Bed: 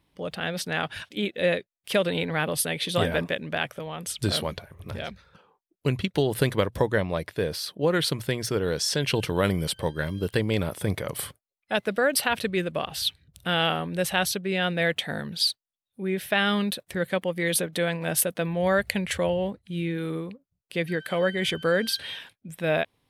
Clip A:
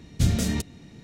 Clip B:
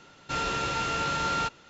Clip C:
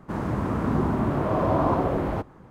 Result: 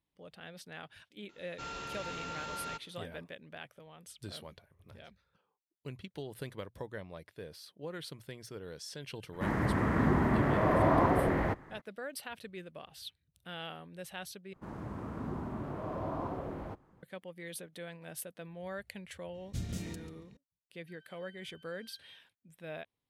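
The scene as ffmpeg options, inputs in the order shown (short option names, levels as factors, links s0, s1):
-filter_complex "[3:a]asplit=2[s0][s1];[0:a]volume=0.112[s2];[2:a]asoftclip=type=tanh:threshold=0.112[s3];[s0]equalizer=f=1900:w=3:g=12.5[s4];[1:a]asplit=2[s5][s6];[s6]adelay=139,lowpass=f=2400:p=1,volume=0.631,asplit=2[s7][s8];[s8]adelay=139,lowpass=f=2400:p=1,volume=0.37,asplit=2[s9][s10];[s10]adelay=139,lowpass=f=2400:p=1,volume=0.37,asplit=2[s11][s12];[s12]adelay=139,lowpass=f=2400:p=1,volume=0.37,asplit=2[s13][s14];[s14]adelay=139,lowpass=f=2400:p=1,volume=0.37[s15];[s5][s7][s9][s11][s13][s15]amix=inputs=6:normalize=0[s16];[s2]asplit=2[s17][s18];[s17]atrim=end=14.534[s19];[s1]atrim=end=2.5,asetpts=PTS-STARTPTS,volume=0.178[s20];[s18]atrim=start=17.026[s21];[s3]atrim=end=1.69,asetpts=PTS-STARTPTS,volume=0.251,afade=t=in:d=0.004:c=hsin,afade=t=out:st=1.686:d=0.004:c=hsin,adelay=1290[s22];[s4]atrim=end=2.5,asetpts=PTS-STARTPTS,volume=0.631,afade=t=in:d=0.02,afade=t=out:st=2.48:d=0.02,adelay=9320[s23];[s16]atrim=end=1.03,asetpts=PTS-STARTPTS,volume=0.15,afade=t=in:d=0.004:c=hsin,afade=t=out:st=1.026:d=0.004:c=hsin,adelay=19340[s24];[s19][s20]acrossfade=d=0.004:c1=hsin:c2=hsin[s25];[s25][s21]acrossfade=d=0.004:c1=hsin:c2=hsin[s26];[s26][s22][s23][s24]amix=inputs=4:normalize=0"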